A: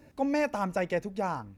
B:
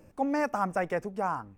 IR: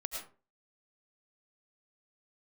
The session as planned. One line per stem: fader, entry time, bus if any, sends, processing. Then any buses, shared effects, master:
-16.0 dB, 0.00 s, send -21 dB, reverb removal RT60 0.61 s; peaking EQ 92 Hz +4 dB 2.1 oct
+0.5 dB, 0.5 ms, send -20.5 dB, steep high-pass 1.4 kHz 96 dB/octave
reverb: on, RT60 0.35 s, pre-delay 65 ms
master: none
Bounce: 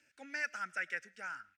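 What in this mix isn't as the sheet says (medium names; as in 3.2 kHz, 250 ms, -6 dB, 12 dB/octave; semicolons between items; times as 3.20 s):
stem A -16.0 dB -> -24.0 dB; master: extra three-band isolator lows -13 dB, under 200 Hz, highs -18 dB, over 7.6 kHz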